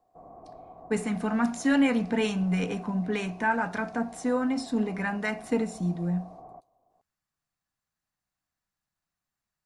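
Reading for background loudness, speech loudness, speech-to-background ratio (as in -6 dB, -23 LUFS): -48.0 LUFS, -28.0 LUFS, 20.0 dB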